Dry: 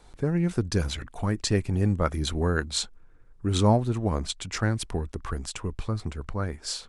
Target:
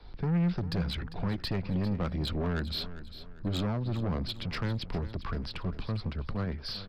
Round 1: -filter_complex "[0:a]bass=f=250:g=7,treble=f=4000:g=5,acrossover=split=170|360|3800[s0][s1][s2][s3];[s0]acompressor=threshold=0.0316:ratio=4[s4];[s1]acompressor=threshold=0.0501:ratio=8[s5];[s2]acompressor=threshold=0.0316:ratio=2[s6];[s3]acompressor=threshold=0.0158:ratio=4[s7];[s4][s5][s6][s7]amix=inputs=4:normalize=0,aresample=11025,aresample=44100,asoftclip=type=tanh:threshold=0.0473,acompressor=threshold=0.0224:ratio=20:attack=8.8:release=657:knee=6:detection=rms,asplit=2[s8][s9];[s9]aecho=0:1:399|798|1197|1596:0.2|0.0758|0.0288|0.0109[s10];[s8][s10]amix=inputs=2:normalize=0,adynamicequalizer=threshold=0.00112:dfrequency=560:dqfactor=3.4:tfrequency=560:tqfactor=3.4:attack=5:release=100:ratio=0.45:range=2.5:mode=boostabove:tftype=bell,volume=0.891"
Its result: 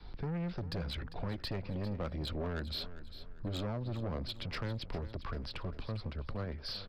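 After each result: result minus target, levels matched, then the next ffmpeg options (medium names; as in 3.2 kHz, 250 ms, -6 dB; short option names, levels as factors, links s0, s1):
compression: peak gain reduction +6 dB; 500 Hz band +3.0 dB
-filter_complex "[0:a]bass=f=250:g=7,treble=f=4000:g=5,acrossover=split=170|360|3800[s0][s1][s2][s3];[s0]acompressor=threshold=0.0316:ratio=4[s4];[s1]acompressor=threshold=0.0501:ratio=8[s5];[s2]acompressor=threshold=0.0316:ratio=2[s6];[s3]acompressor=threshold=0.0158:ratio=4[s7];[s4][s5][s6][s7]amix=inputs=4:normalize=0,aresample=11025,aresample=44100,asoftclip=type=tanh:threshold=0.0473,asplit=2[s8][s9];[s9]aecho=0:1:399|798|1197|1596:0.2|0.0758|0.0288|0.0109[s10];[s8][s10]amix=inputs=2:normalize=0,adynamicequalizer=threshold=0.00112:dfrequency=560:dqfactor=3.4:tfrequency=560:tqfactor=3.4:attack=5:release=100:ratio=0.45:range=2.5:mode=boostabove:tftype=bell,volume=0.891"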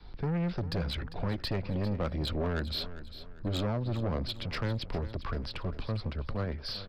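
500 Hz band +3.0 dB
-filter_complex "[0:a]bass=f=250:g=7,treble=f=4000:g=5,acrossover=split=170|360|3800[s0][s1][s2][s3];[s0]acompressor=threshold=0.0316:ratio=4[s4];[s1]acompressor=threshold=0.0501:ratio=8[s5];[s2]acompressor=threshold=0.0316:ratio=2[s6];[s3]acompressor=threshold=0.0158:ratio=4[s7];[s4][s5][s6][s7]amix=inputs=4:normalize=0,aresample=11025,aresample=44100,asoftclip=type=tanh:threshold=0.0473,asplit=2[s8][s9];[s9]aecho=0:1:399|798|1197|1596:0.2|0.0758|0.0288|0.0109[s10];[s8][s10]amix=inputs=2:normalize=0,adynamicequalizer=threshold=0.00112:dfrequency=180:dqfactor=3.4:tfrequency=180:tqfactor=3.4:attack=5:release=100:ratio=0.45:range=2.5:mode=boostabove:tftype=bell,volume=0.891"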